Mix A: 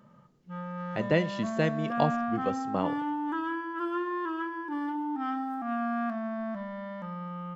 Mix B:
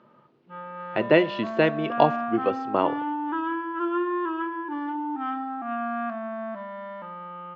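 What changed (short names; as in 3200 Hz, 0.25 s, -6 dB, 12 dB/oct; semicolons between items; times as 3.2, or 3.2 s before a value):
speech +5.0 dB; master: add speaker cabinet 150–4100 Hz, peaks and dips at 180 Hz -9 dB, 360 Hz +7 dB, 650 Hz +3 dB, 960 Hz +5 dB, 1400 Hz +4 dB, 2600 Hz +5 dB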